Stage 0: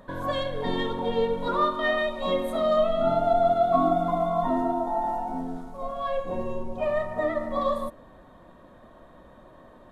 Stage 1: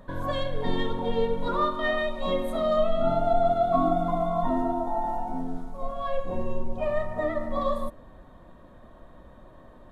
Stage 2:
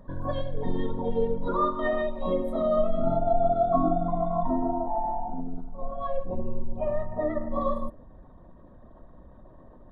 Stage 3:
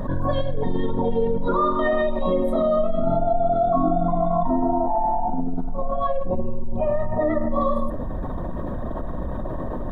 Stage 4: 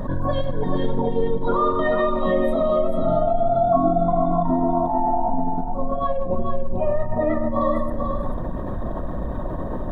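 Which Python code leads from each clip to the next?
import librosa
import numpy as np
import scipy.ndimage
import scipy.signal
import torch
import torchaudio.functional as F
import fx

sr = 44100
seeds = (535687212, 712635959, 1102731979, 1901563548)

y1 = fx.low_shelf(x, sr, hz=110.0, db=10.0)
y1 = y1 * 10.0 ** (-2.0 / 20.0)
y2 = fx.envelope_sharpen(y1, sr, power=1.5)
y3 = fx.env_flatten(y2, sr, amount_pct=70)
y3 = y3 * 10.0 ** (1.0 / 20.0)
y4 = y3 + 10.0 ** (-5.5 / 20.0) * np.pad(y3, (int(440 * sr / 1000.0), 0))[:len(y3)]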